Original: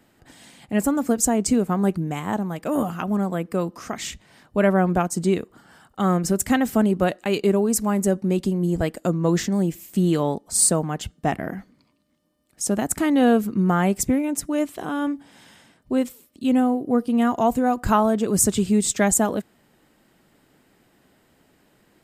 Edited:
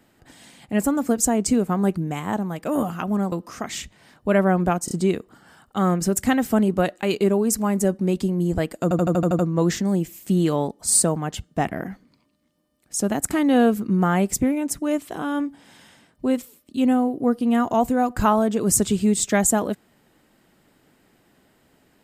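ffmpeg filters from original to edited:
-filter_complex "[0:a]asplit=11[a][b][c][d][e][f][g][h][i][j][k];[a]atrim=end=3.322[l];[b]atrim=start=3.608:end=5.172[m];[c]atrim=start=5.138:end=5.172[n];[d]atrim=start=5.138:end=9.142[o];[e]atrim=start=9.058:end=9.142[p];[f]atrim=start=9.058:end=9.142[q];[g]atrim=start=9.058:end=9.142[r];[h]atrim=start=9.058:end=9.142[s];[i]atrim=start=9.058:end=9.142[t];[j]atrim=start=9.058:end=9.142[u];[k]atrim=start=9.058[v];[l][m]acrossfade=d=0.004:c1=hsin:c2=hsin[w];[w][n]acrossfade=d=0.004:c1=hsin:c2=hsin[x];[x][o]acrossfade=d=0.004:c1=hsin:c2=hsin[y];[y][p]acrossfade=d=0.004:c1=hsin:c2=hsin[z];[z][q]acrossfade=d=0.004:c1=hsin:c2=hsin[aa];[aa][r]acrossfade=d=0.004:c1=hsin:c2=hsin[ab];[ab][s]acrossfade=d=0.004:c1=hsin:c2=hsin[ac];[ac][t]acrossfade=d=0.004:c1=hsin:c2=hsin[ad];[ad][u]acrossfade=d=0.004:c1=hsin:c2=hsin[ae];[ae][v]acrossfade=d=0.004:c1=hsin:c2=hsin"

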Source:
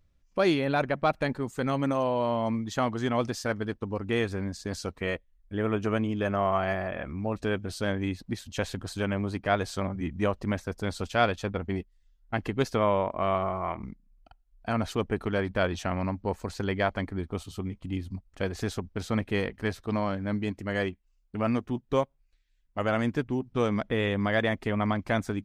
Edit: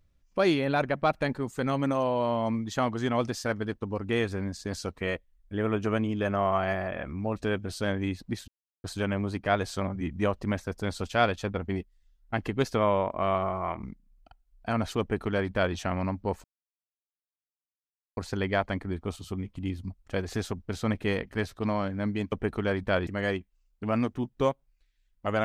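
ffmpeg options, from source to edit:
-filter_complex "[0:a]asplit=6[a][b][c][d][e][f];[a]atrim=end=8.48,asetpts=PTS-STARTPTS,afade=t=out:st=8.476:d=0.004:c=hsin[g];[b]atrim=start=8.48:end=8.84,asetpts=PTS-STARTPTS,volume=0[h];[c]atrim=start=8.84:end=16.44,asetpts=PTS-STARTPTS,afade=t=in:d=0.004:c=hsin,afade=t=out:st=7.596:d=0.004:c=hsin,apad=pad_dur=1.73[i];[d]atrim=start=16.44:end=20.592,asetpts=PTS-STARTPTS,afade=t=in:d=0.004:c=hsin[j];[e]atrim=start=14.998:end=15.752[k];[f]atrim=start=20.588[l];[g][h][i][j]concat=n=4:v=0:a=1[m];[m][k]acrossfade=d=0.004:c1=hsin:c2=hsin[n];[n][l]acrossfade=d=0.004:c1=hsin:c2=hsin"

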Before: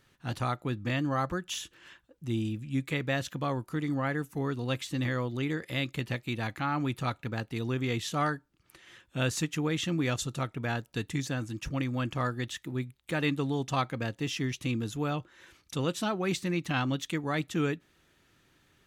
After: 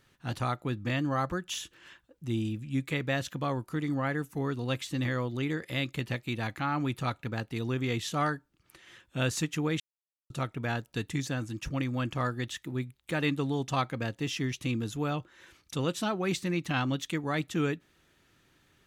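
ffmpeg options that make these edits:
-filter_complex "[0:a]asplit=3[a][b][c];[a]atrim=end=9.8,asetpts=PTS-STARTPTS,afade=t=out:st=9.796:d=0.004:c=hsin[d];[b]atrim=start=9.8:end=10.3,asetpts=PTS-STARTPTS,volume=0[e];[c]atrim=start=10.3,asetpts=PTS-STARTPTS,afade=t=in:d=0.004:c=hsin[f];[d][e][f]concat=n=3:v=0:a=1"

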